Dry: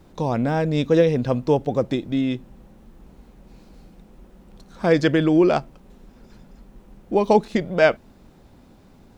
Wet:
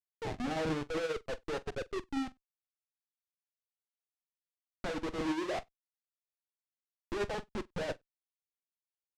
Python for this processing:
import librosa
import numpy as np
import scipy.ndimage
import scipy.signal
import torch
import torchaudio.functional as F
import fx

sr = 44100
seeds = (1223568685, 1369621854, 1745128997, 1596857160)

p1 = scipy.signal.medfilt(x, 41)
p2 = scipy.signal.sosfilt(scipy.signal.butter(2, 350.0, 'highpass', fs=sr, output='sos'), p1)
p3 = fx.noise_reduce_blind(p2, sr, reduce_db=28)
p4 = fx.harmonic_tremolo(p3, sr, hz=2.8, depth_pct=70, crossover_hz=490.0)
p5 = 10.0 ** (-23.0 / 20.0) * np.tanh(p4 / 10.0 ** (-23.0 / 20.0))
p6 = p4 + (p5 * librosa.db_to_amplitude(-11.5))
p7 = fx.filter_lfo_lowpass(p6, sr, shape='saw_up', hz=5.1, low_hz=800.0, high_hz=2100.0, q=1.3)
p8 = fx.schmitt(p7, sr, flips_db=-35.0)
p9 = fx.air_absorb(p8, sr, metres=84.0)
p10 = fx.echo_multitap(p9, sr, ms=(44, 95), db=(-8.0, -16.5))
p11 = fx.upward_expand(p10, sr, threshold_db=-44.0, expansion=2.5)
y = p11 * librosa.db_to_amplitude(-2.5)